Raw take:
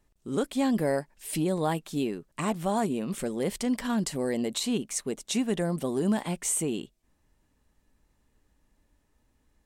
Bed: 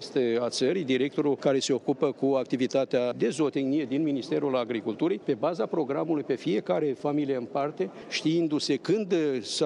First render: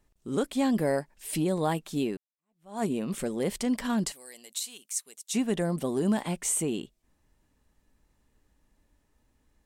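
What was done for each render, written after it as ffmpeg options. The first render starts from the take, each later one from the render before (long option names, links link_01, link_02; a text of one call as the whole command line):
ffmpeg -i in.wav -filter_complex "[0:a]asettb=1/sr,asplit=3[link_01][link_02][link_03];[link_01]atrim=end=4.124[link_04];[link_02]atrim=start=4.12:end=5.34,asetpts=PTS-STARTPTS,afade=type=in:duration=0.004:curve=qsin,afade=type=out:start_time=1.216:duration=0.004:curve=qsin,aderivative[link_05];[link_03]atrim=start=5.336[link_06];[link_04][link_05]acrossfade=duration=0.004:curve1=hsin:curve2=qsin[link_07];[link_07][link_06]acrossfade=duration=0.004:curve1=qsin:curve2=hsin,asplit=2[link_08][link_09];[link_08]atrim=end=2.17,asetpts=PTS-STARTPTS,afade=type=out:start_time=2.166:duration=0.004:curve=hsin[link_10];[link_09]atrim=start=2.17,asetpts=PTS-STARTPTS,afade=type=in:duration=0.66:curve=exp[link_11];[link_10][link_11]concat=n=2:v=0:a=1" out.wav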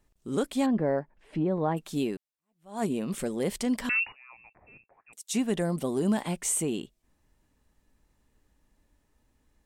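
ffmpeg -i in.wav -filter_complex "[0:a]asplit=3[link_01][link_02][link_03];[link_01]afade=type=out:start_time=0.65:duration=0.02[link_04];[link_02]lowpass=1500,afade=type=in:start_time=0.65:duration=0.02,afade=type=out:start_time=1.76:duration=0.02[link_05];[link_03]afade=type=in:start_time=1.76:duration=0.02[link_06];[link_04][link_05][link_06]amix=inputs=3:normalize=0,asettb=1/sr,asplit=3[link_07][link_08][link_09];[link_07]atrim=end=3.894[link_10];[link_08]atrim=start=3.89:end=5.13,asetpts=PTS-STARTPTS,afade=type=in:duration=0.004:curve=qsin,afade=type=out:start_time=1.236:duration=0.004:curve=qsin,lowpass=frequency=2500:width_type=q:width=0.5098,lowpass=frequency=2500:width_type=q:width=0.6013,lowpass=frequency=2500:width_type=q:width=0.9,lowpass=frequency=2500:width_type=q:width=2.563,afreqshift=-2900[link_11];[link_09]atrim=start=5.126[link_12];[link_10][link_11]acrossfade=duration=0.004:curve1=hsin:curve2=qsin[link_13];[link_13][link_12]acrossfade=duration=0.004:curve1=qsin:curve2=hsin,asettb=1/sr,asplit=3[link_14][link_15][link_16];[link_14]atrim=end=5.704[link_17];[link_15]atrim=start=5.7:end=6.14,asetpts=PTS-STARTPTS,afade=type=in:duration=0.004:curve=qsin,afade=type=out:start_time=0.436:duration=0.004:curve=qsin,bandreject=frequency=1700:width=12[link_18];[link_16]atrim=start=6.136[link_19];[link_17][link_18]acrossfade=duration=0.004:curve1=hsin:curve2=qsin[link_20];[link_20][link_19]acrossfade=duration=0.004:curve1=qsin:curve2=hsin" out.wav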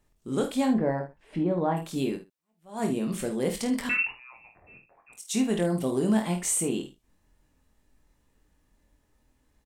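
ffmpeg -i in.wav -filter_complex "[0:a]asplit=2[link_01][link_02];[link_02]adelay=50,volume=-9dB[link_03];[link_01][link_03]amix=inputs=2:normalize=0,aecho=1:1:23|79:0.501|0.158" out.wav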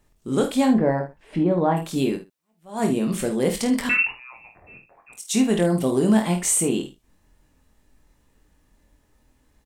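ffmpeg -i in.wav -af "volume=6dB" out.wav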